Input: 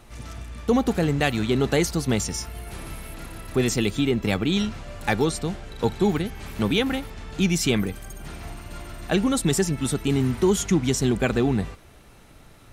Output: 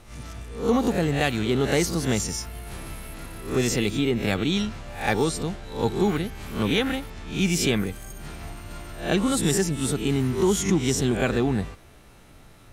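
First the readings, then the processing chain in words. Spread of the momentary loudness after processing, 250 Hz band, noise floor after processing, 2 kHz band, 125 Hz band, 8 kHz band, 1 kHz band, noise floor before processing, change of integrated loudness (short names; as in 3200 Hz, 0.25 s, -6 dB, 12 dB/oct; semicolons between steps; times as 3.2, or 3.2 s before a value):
16 LU, -1.0 dB, -50 dBFS, 0.0 dB, -1.0 dB, +0.5 dB, 0.0 dB, -50 dBFS, -0.5 dB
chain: spectral swells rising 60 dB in 0.41 s; gain -2 dB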